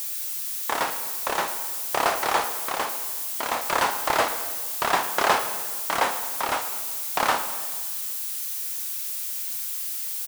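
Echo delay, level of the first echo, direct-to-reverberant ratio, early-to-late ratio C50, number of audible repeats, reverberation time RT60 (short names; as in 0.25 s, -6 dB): 0.109 s, -16.5 dB, 8.0 dB, 9.0 dB, 1, 1.7 s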